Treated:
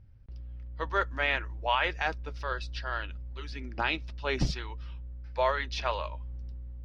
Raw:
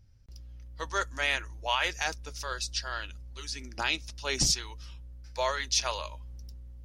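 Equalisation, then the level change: distance through air 390 m; +4.5 dB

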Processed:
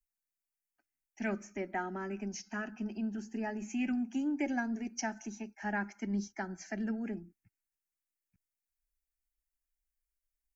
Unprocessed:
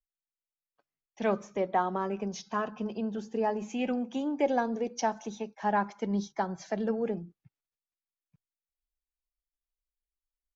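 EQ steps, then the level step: peaking EQ 630 Hz -12.5 dB 1.9 oct; dynamic bell 810 Hz, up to -4 dB, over -54 dBFS, Q 3.4; static phaser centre 730 Hz, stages 8; +4.5 dB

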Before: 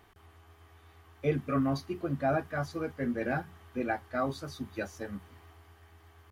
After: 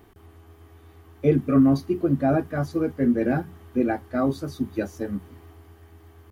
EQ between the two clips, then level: bass shelf 170 Hz +8 dB; peaking EQ 310 Hz +11 dB 1.8 oct; treble shelf 9.5 kHz +9.5 dB; 0.0 dB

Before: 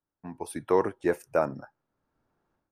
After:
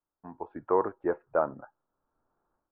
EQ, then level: Chebyshev low-pass 1.3 kHz, order 3; distance through air 160 m; peaking EQ 130 Hz -11 dB 2.9 oct; +3.0 dB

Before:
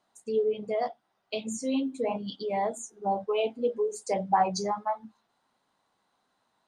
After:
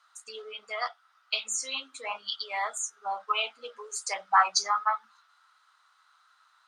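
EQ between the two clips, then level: resonant high-pass 1.3 kHz, resonance Q 8.5; peaking EQ 4.8 kHz +9.5 dB 2.4 oct; 0.0 dB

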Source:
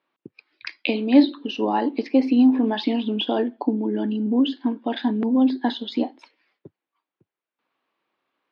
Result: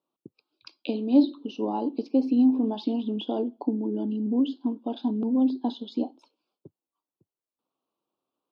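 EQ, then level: Butterworth band-stop 1.9 kHz, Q 1.3; peaking EQ 2.1 kHz -8.5 dB 2.9 oct; -3.5 dB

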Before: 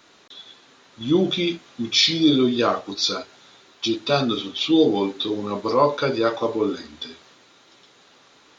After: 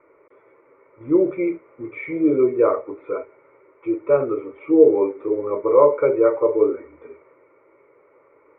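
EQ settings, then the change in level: rippled Chebyshev low-pass 2.3 kHz, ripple 6 dB; peaking EQ 440 Hz +7 dB 2.1 oct; static phaser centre 1.1 kHz, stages 8; +2.0 dB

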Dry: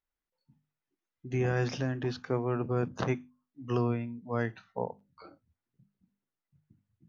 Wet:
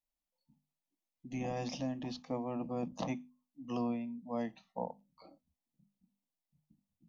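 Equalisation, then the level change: static phaser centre 400 Hz, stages 6; -1.5 dB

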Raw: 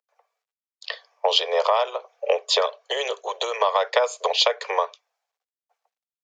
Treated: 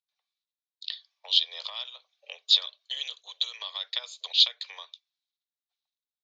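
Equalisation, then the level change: band-pass filter 3.8 kHz, Q 6.5; tilt EQ +2 dB/octave; +2.0 dB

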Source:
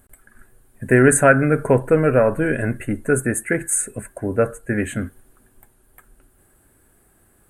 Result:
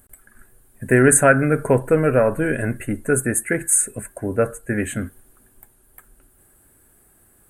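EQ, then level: treble shelf 7.5 kHz +8 dB; -1.0 dB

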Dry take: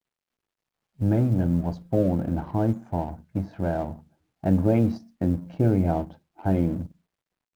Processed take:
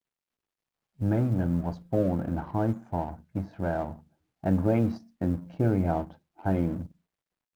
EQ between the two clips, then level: dynamic bell 1.3 kHz, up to +6 dB, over -43 dBFS, Q 0.97; -4.0 dB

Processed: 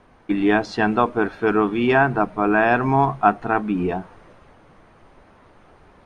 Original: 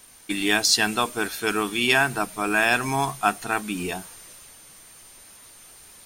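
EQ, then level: low-pass 1.1 kHz 12 dB/octave; +8.0 dB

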